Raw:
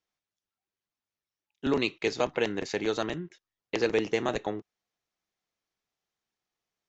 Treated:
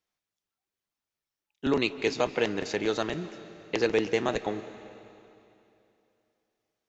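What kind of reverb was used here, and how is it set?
comb and all-pass reverb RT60 2.9 s, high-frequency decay 0.95×, pre-delay 120 ms, DRR 13.5 dB
level +1 dB

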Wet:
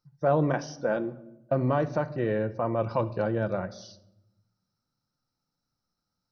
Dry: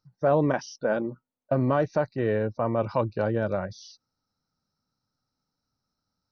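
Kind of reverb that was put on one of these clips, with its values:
rectangular room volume 2,800 cubic metres, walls furnished, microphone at 0.84 metres
level −2 dB

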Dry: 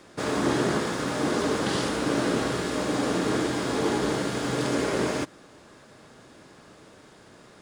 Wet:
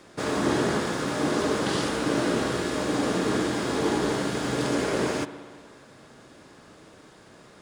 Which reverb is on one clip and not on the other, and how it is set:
spring reverb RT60 1.8 s, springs 59 ms, chirp 60 ms, DRR 11 dB

